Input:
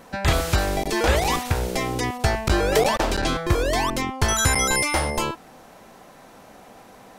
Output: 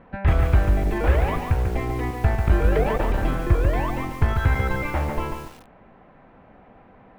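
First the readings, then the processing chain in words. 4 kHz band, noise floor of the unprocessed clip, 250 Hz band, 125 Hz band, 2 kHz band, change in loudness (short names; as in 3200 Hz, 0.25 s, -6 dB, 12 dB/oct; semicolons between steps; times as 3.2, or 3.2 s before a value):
-15.0 dB, -48 dBFS, -1.0 dB, +4.5 dB, -5.5 dB, -1.0 dB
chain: LPF 2500 Hz 24 dB/oct; low shelf 170 Hz +11 dB; lo-fi delay 0.143 s, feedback 35%, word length 6-bit, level -5 dB; gain -5.5 dB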